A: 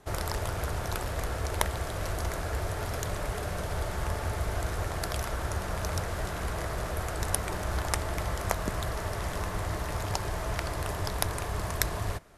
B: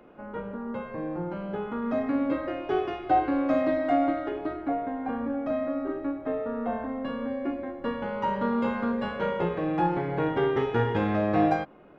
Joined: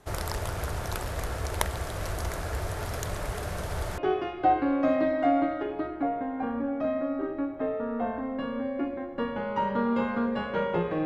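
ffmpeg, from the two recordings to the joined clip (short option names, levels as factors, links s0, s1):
-filter_complex "[0:a]apad=whole_dur=11.05,atrim=end=11.05,atrim=end=3.982[s0];[1:a]atrim=start=2.638:end=9.71[s1];[s0][s1]acrossfade=d=0.004:c1=hsin:c2=hsin"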